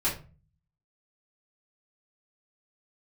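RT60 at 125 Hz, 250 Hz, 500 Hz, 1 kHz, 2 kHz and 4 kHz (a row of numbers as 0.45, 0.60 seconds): 0.80, 0.65, 0.35, 0.35, 0.30, 0.25 seconds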